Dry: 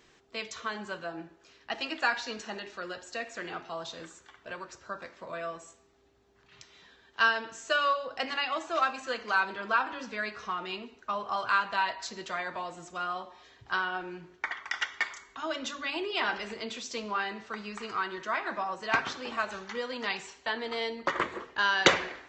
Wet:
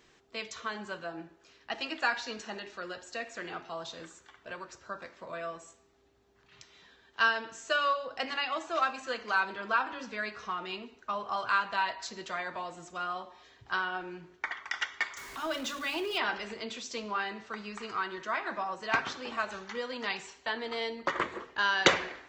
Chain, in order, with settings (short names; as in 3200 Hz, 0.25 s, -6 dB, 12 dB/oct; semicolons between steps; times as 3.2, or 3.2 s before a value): 15.17–16.18 zero-crossing step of -40 dBFS; gain -1.5 dB